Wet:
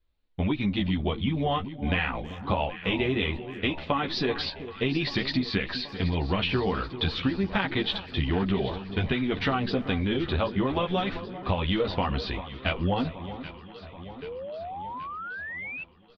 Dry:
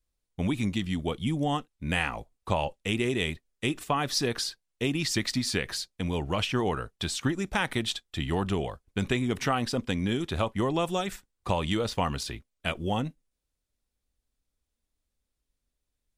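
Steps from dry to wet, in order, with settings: steep low-pass 4300 Hz 48 dB/oct; speakerphone echo 0.32 s, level -25 dB; chorus voices 4, 0.48 Hz, delay 13 ms, depth 2.6 ms; compressor, threshold -31 dBFS, peak gain reduction 9 dB; on a send: echo with dull and thin repeats by turns 0.39 s, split 1200 Hz, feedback 78%, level -12 dB; on the sum: painted sound rise, 14.22–15.84, 430–2700 Hz -45 dBFS; gain +8.5 dB

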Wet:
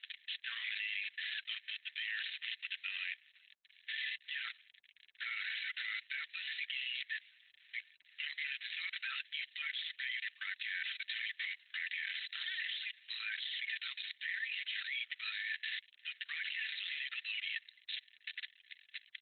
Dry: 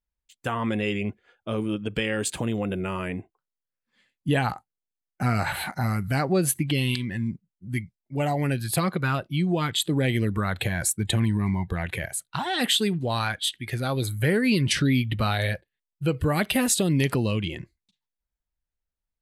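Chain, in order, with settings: delta modulation 32 kbps, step -32 dBFS; Chebyshev high-pass 1800 Hz, order 5; comb 4.5 ms, depth 46%; level quantiser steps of 22 dB; gain +7 dB; Opus 8 kbps 48000 Hz

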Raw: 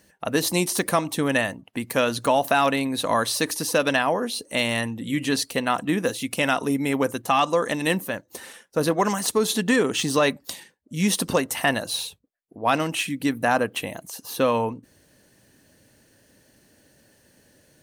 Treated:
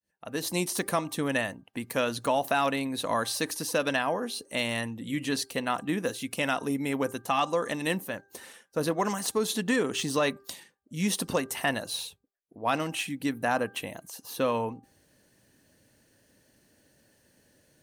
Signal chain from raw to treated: opening faded in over 0.60 s; de-hum 396 Hz, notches 4; gain -6 dB

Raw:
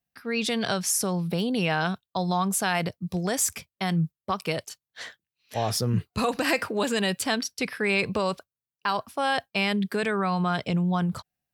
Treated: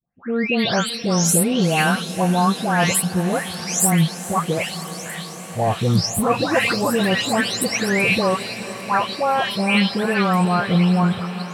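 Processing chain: spectral delay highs late, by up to 0.419 s; diffused feedback echo 0.463 s, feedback 75%, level -14.5 dB; gain +8 dB

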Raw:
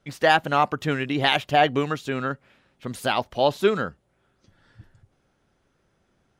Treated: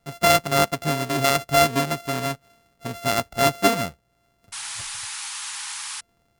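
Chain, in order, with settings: sample sorter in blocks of 64 samples; painted sound noise, 4.52–6.01, 790–11000 Hz -34 dBFS; gain +1 dB

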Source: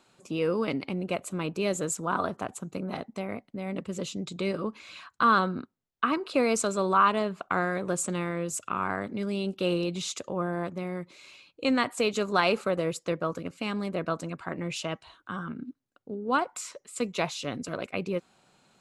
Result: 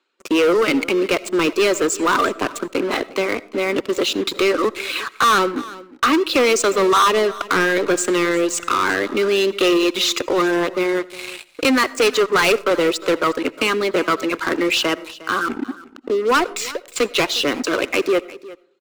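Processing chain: LPF 3800 Hz 12 dB/oct; reverb removal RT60 0.57 s; steep high-pass 300 Hz 36 dB/oct; bell 710 Hz -12 dB 0.87 oct; in parallel at -2 dB: compressor 4:1, threshold -42 dBFS, peak gain reduction 17.5 dB; on the sum: sample leveller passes 5; echo 0.357 s -19 dB; digital reverb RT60 0.53 s, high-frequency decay 0.35×, pre-delay 40 ms, DRR 20 dB; 12.17–12.71 three-band expander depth 40%; gain +1.5 dB

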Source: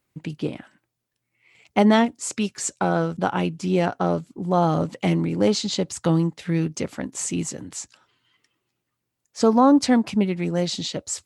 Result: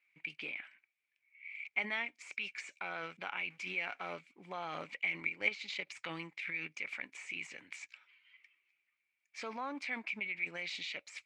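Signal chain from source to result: 3.5–4.13 G.711 law mismatch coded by mu; de-esser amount 70%; band-pass 2300 Hz, Q 13; 5.2–5.87 transient shaper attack +9 dB, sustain -7 dB; in parallel at -0.5 dB: negative-ratio compressor -56 dBFS, ratio -1; on the sum: gain +5.5 dB

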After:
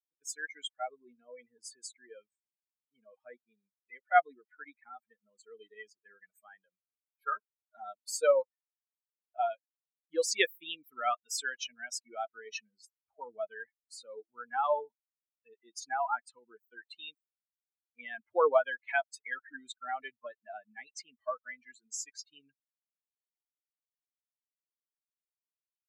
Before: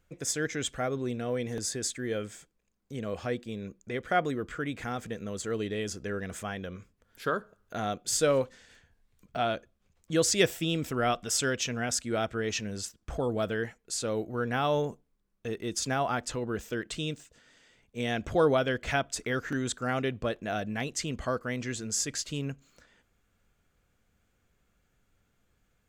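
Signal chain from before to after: per-bin expansion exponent 3; HPF 560 Hz 24 dB/oct; high shelf 2800 Hz -11.5 dB; gain +8.5 dB

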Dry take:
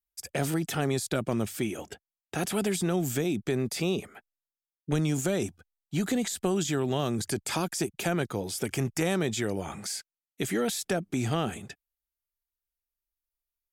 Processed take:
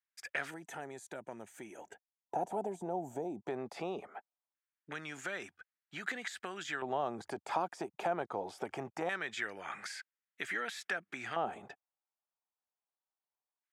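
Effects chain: spectral gain 0.5–3.48, 1000–5800 Hz -14 dB; compressor 2:1, threshold -34 dBFS, peak gain reduction 7 dB; LFO band-pass square 0.22 Hz 820–1700 Hz; gain +8 dB

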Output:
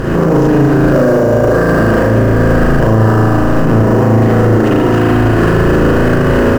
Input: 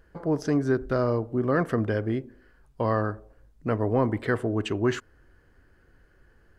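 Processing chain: per-bin compression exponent 0.4; recorder AGC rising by 17 dB/s; 0.84–1.61 small resonant body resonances 570/1600 Hz, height 14 dB; on a send: echo 0.807 s -9.5 dB; on the sum: spring tank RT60 2.4 s, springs 36 ms, chirp 45 ms, DRR -7 dB; in parallel at -10.5 dB: sample-rate reducer 6400 Hz, jitter 20%; on the sum: low shelf 280 Hz +10.5 dB; maximiser +10 dB; gain -1.5 dB

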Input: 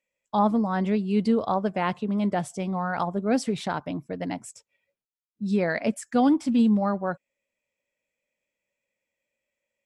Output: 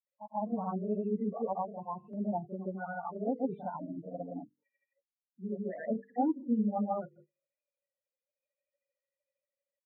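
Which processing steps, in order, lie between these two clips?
loudest bins only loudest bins 8; Gaussian blur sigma 5.3 samples; low shelf 420 Hz -10 dB; notches 50/100/150/200/250/300/350/400/450/500 Hz; random-step tremolo 1.9 Hz; in parallel at -1 dB: compressor, threshold -41 dBFS, peak gain reduction 16 dB; on the sum: low shelf 75 Hz -9 dB; on a send: reverse echo 38 ms -10 dB; on the sum: grains 0.127 s, grains 13/s, spray 0.1 s, pitch spread up and down by 0 st

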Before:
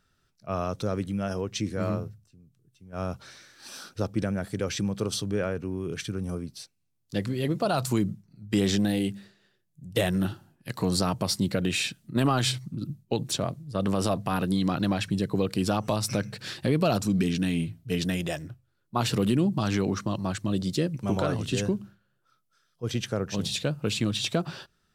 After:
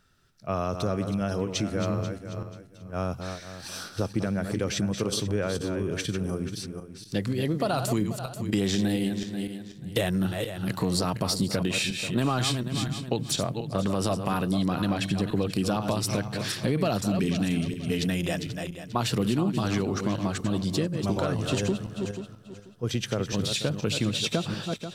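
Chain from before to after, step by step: regenerating reverse delay 0.243 s, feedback 45%, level -8.5 dB; compressor 2:1, threshold -31 dBFS, peak gain reduction 7 dB; gain +4.5 dB

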